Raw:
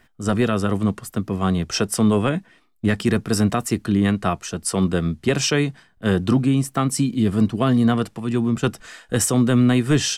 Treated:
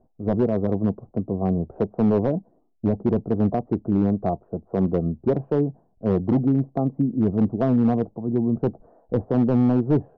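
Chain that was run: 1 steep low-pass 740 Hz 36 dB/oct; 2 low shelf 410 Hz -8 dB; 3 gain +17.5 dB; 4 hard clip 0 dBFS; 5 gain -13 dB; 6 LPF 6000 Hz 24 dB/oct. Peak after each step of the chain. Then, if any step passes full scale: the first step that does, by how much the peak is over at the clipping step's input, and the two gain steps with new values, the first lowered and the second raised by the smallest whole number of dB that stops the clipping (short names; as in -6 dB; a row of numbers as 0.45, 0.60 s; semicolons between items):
-8.5, -12.5, +5.0, 0.0, -13.0, -13.0 dBFS; step 3, 5.0 dB; step 3 +12.5 dB, step 5 -8 dB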